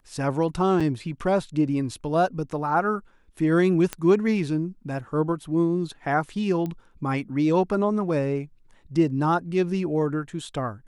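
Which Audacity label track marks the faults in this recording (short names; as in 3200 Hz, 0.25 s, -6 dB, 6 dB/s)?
0.800000	0.810000	gap 5.9 ms
3.930000	3.930000	pop -12 dBFS
6.660000	6.660000	pop -20 dBFS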